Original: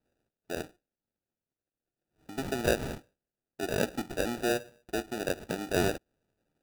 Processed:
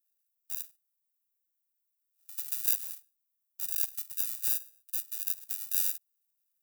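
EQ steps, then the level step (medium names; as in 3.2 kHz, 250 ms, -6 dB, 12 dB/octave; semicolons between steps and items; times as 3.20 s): differentiator; treble shelf 4 kHz +11.5 dB; treble shelf 11 kHz +10 dB; -7.5 dB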